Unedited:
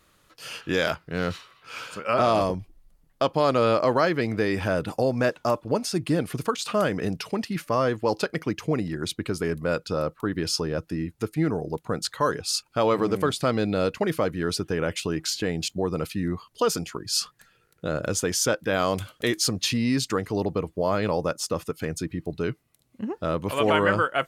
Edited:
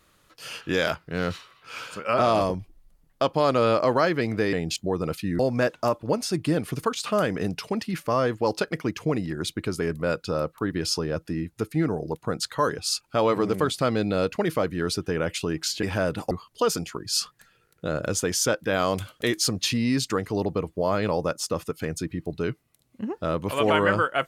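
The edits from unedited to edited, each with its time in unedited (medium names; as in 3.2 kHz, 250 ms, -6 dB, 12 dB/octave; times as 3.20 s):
4.53–5.01 s: swap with 15.45–16.31 s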